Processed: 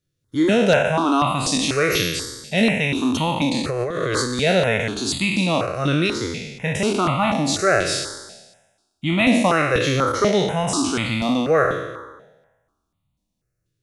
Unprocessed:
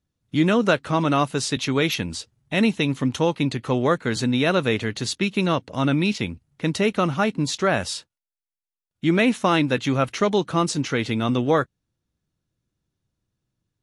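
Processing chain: spectral trails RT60 1.18 s; 3.54–4.39 negative-ratio compressor -22 dBFS, ratio -1; step phaser 4.1 Hz 230–1600 Hz; gain +2.5 dB

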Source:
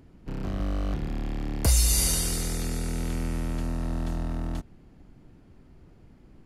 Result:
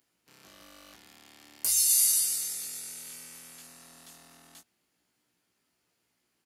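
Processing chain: HPF 54 Hz; differentiator; doubler 17 ms -3 dB

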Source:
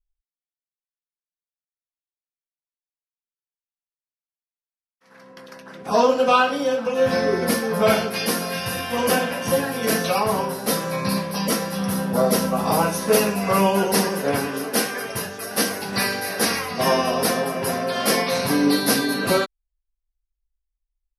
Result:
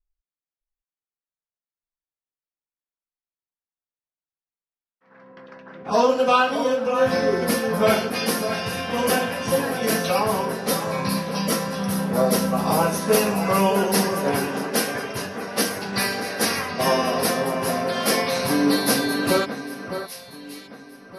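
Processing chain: low-pass opened by the level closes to 1800 Hz, open at -19.5 dBFS; echo with dull and thin repeats by turns 0.61 s, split 2000 Hz, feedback 53%, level -9 dB; gain -1 dB

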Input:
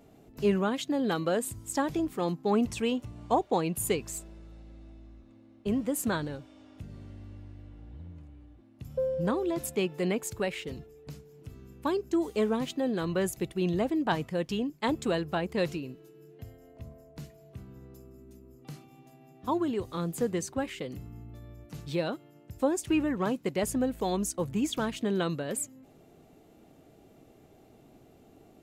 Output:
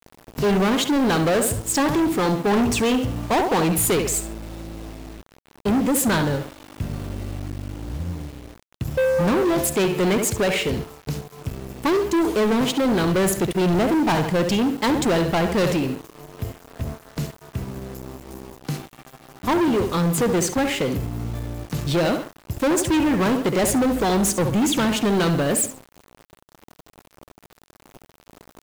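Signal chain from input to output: tape echo 69 ms, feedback 38%, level -10 dB, low-pass 4200 Hz; sample leveller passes 5; bit-crush 7-bit; gain -2 dB

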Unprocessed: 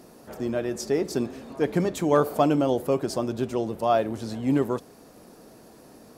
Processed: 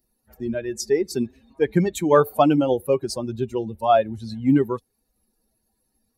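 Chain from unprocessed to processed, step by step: per-bin expansion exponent 2; gain +7.5 dB

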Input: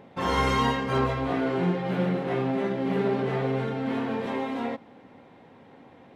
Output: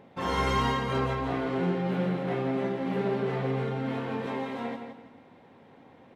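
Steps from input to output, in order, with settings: feedback echo 0.167 s, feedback 30%, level -7.5 dB; gain -3.5 dB

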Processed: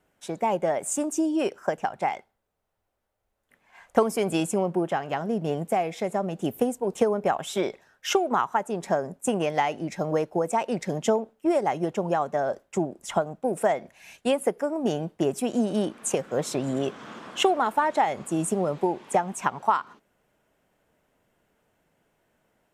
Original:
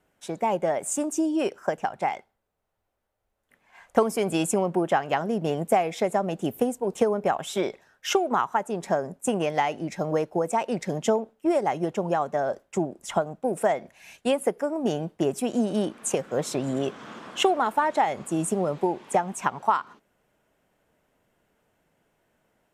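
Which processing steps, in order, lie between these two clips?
4.4–6.4 harmonic-percussive split percussive -5 dB

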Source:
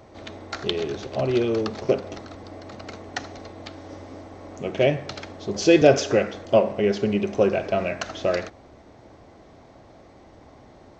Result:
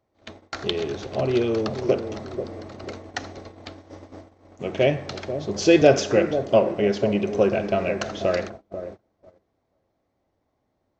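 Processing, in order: dark delay 0.489 s, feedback 37%, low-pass 790 Hz, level -9 dB; gate -37 dBFS, range -25 dB

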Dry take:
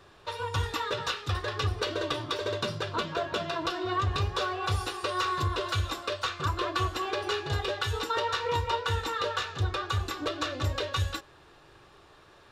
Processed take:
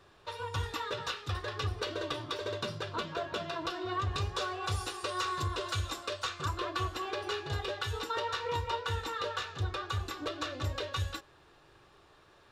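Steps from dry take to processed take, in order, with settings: 4.08–6.58 dynamic EQ 7800 Hz, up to +6 dB, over -52 dBFS, Q 0.96; gain -5 dB

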